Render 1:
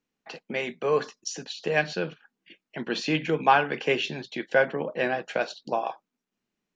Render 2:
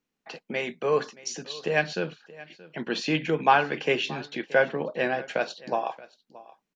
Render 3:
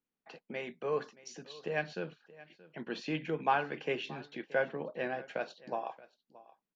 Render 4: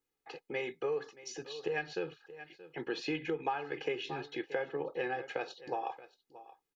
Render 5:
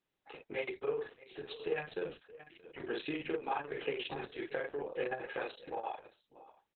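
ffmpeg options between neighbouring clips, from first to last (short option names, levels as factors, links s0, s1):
-af "aecho=1:1:626:0.1"
-af "highshelf=f=4200:g=-9.5,volume=0.355"
-af "aecho=1:1:2.4:0.85,acompressor=threshold=0.0224:ratio=8,volume=1.26"
-af "aecho=1:1:21|48:0.501|0.668,volume=0.75" -ar 48000 -c:a libopus -b:a 6k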